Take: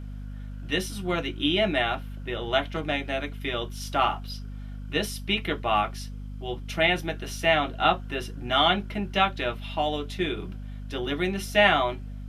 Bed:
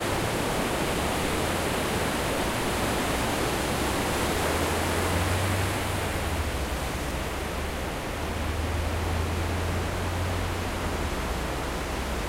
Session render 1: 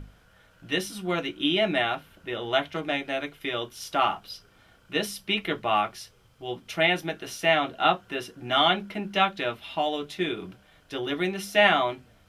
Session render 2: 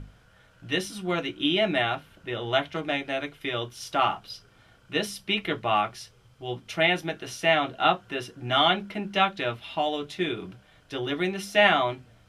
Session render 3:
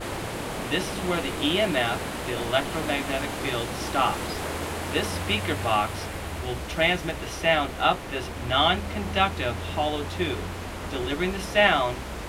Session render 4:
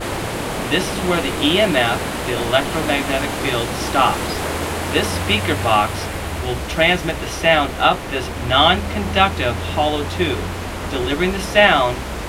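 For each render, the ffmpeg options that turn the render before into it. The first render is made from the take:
-af "bandreject=f=50:t=h:w=6,bandreject=f=100:t=h:w=6,bandreject=f=150:t=h:w=6,bandreject=f=200:t=h:w=6,bandreject=f=250:t=h:w=6"
-af "lowpass=11000,equalizer=f=120:w=4.8:g=7.5"
-filter_complex "[1:a]volume=0.562[s0];[0:a][s0]amix=inputs=2:normalize=0"
-af "volume=2.51,alimiter=limit=0.891:level=0:latency=1"

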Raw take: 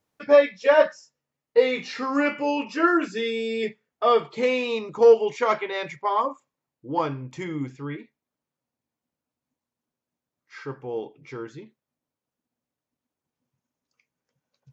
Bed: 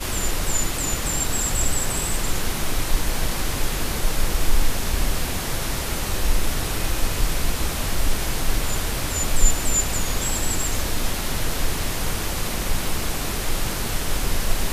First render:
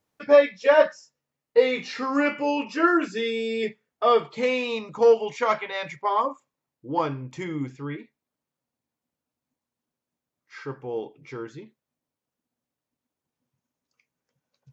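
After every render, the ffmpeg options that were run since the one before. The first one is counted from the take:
-filter_complex "[0:a]asettb=1/sr,asplit=3[s0][s1][s2];[s0]atrim=end=4.334[s3];[s1]atrim=start=4.33:end=5.92,asetpts=PTS-STARTPTS,afade=t=in:d=0.004:c=qsin,afade=t=out:st=1.586:d=0.004:c=qsin,equalizer=f=370:w=5.5:g=-14.5[s4];[s2]atrim=start=5.916[s5];[s3][s4]acrossfade=d=0.004:c1=hsin:c2=qsin[s6];[s6][s5]acrossfade=d=0.004:c1=qsin:c2=hsin"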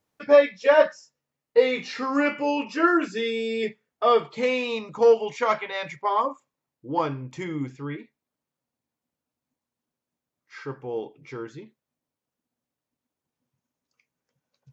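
-af anull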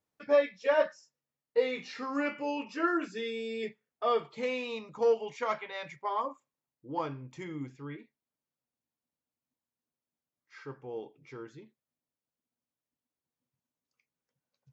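-af "volume=0.355"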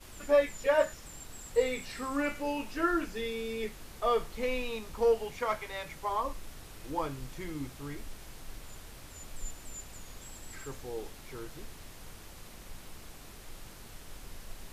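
-filter_complex "[1:a]volume=0.0668[s0];[0:a][s0]amix=inputs=2:normalize=0"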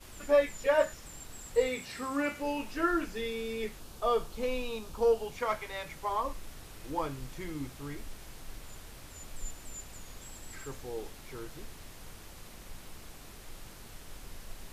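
-filter_complex "[0:a]asettb=1/sr,asplit=3[s0][s1][s2];[s0]atrim=end=1.674[s3];[s1]atrim=start=1.67:end=2.42,asetpts=PTS-STARTPTS,afade=t=in:d=0.004:c=qsin,afade=t=out:st=0.746:d=0.004:c=qsin,highpass=65[s4];[s2]atrim=start=2.416[s5];[s3][s4]acrossfade=d=0.004:c1=hsin:c2=qsin[s6];[s6][s5]acrossfade=d=0.004:c1=qsin:c2=hsin,asettb=1/sr,asplit=3[s7][s8][s9];[s7]atrim=end=3.794[s10];[s8]atrim=start=3.79:end=5.36,asetpts=PTS-STARTPTS,afade=t=in:d=0.004:c=qsin,afade=t=out:st=1.566:d=0.004:c=qsin,equalizer=f=2000:t=o:w=0.47:g=-9[s11];[s9]atrim=start=5.356[s12];[s10][s11]acrossfade=d=0.004:c1=hsin:c2=qsin[s13];[s13][s12]acrossfade=d=0.004:c1=qsin:c2=hsin"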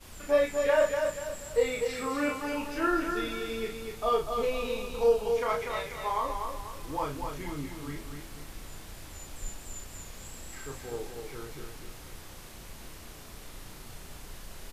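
-filter_complex "[0:a]asplit=2[s0][s1];[s1]adelay=34,volume=0.668[s2];[s0][s2]amix=inputs=2:normalize=0,asplit=2[s3][s4];[s4]aecho=0:1:244|488|732|976|1220:0.531|0.207|0.0807|0.0315|0.0123[s5];[s3][s5]amix=inputs=2:normalize=0"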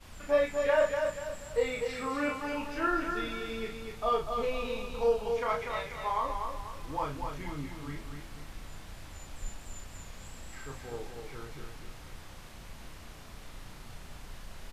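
-af "lowpass=f=3900:p=1,equalizer=f=380:t=o:w=0.88:g=-5"

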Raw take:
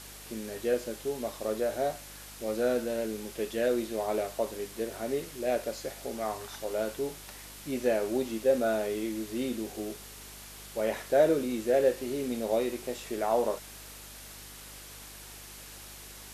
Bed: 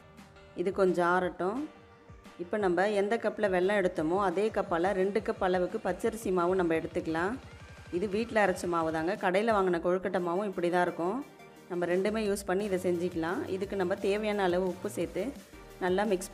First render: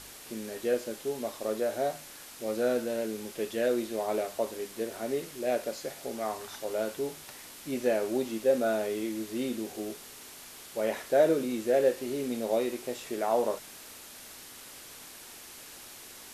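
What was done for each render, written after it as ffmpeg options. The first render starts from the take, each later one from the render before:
-af "bandreject=f=50:t=h:w=4,bandreject=f=100:t=h:w=4,bandreject=f=150:t=h:w=4,bandreject=f=200:t=h:w=4"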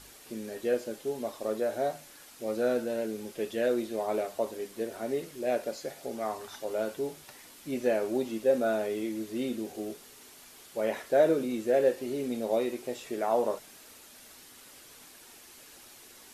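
-af "afftdn=nr=6:nf=-48"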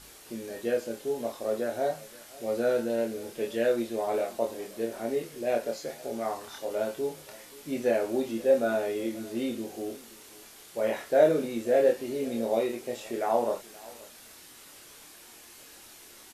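-filter_complex "[0:a]asplit=2[s0][s1];[s1]adelay=26,volume=0.668[s2];[s0][s2]amix=inputs=2:normalize=0,aecho=1:1:527:0.0841"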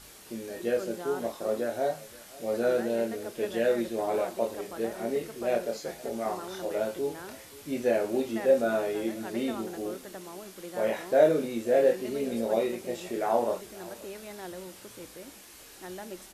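-filter_complex "[1:a]volume=0.224[s0];[0:a][s0]amix=inputs=2:normalize=0"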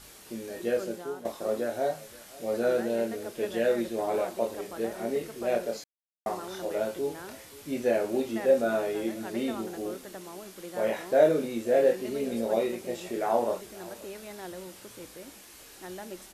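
-filter_complex "[0:a]asplit=4[s0][s1][s2][s3];[s0]atrim=end=1.25,asetpts=PTS-STARTPTS,afade=t=out:st=0.84:d=0.41:silence=0.266073[s4];[s1]atrim=start=1.25:end=5.84,asetpts=PTS-STARTPTS,afade=t=in:d=0.004:c=hsin:silence=0.266073,afade=t=out:st=4.586:d=0.004:c=hsin[s5];[s2]atrim=start=5.84:end=6.26,asetpts=PTS-STARTPTS,volume=0[s6];[s3]atrim=start=6.26,asetpts=PTS-STARTPTS,afade=t=in:d=0.004:c=hsin[s7];[s4][s5][s6][s7]concat=n=4:v=0:a=1"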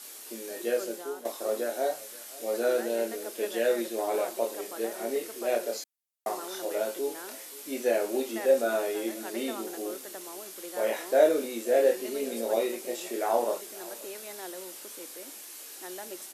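-af "highpass=f=270:w=0.5412,highpass=f=270:w=1.3066,aemphasis=mode=production:type=cd"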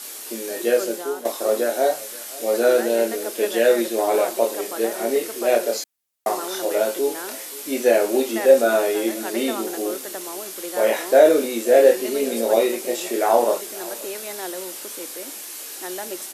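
-af "volume=2.99,alimiter=limit=0.794:level=0:latency=1"

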